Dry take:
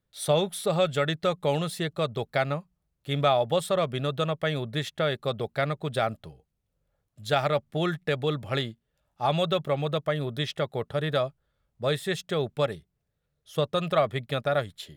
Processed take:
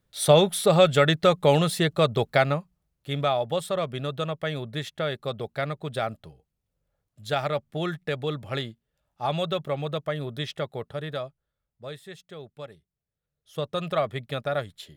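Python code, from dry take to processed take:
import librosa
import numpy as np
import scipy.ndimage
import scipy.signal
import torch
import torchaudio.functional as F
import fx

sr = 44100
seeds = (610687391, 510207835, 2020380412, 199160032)

y = fx.gain(x, sr, db=fx.line((2.22, 6.5), (3.27, -2.0), (10.62, -2.0), (12.16, -14.0), (12.74, -14.0), (13.8, -2.0)))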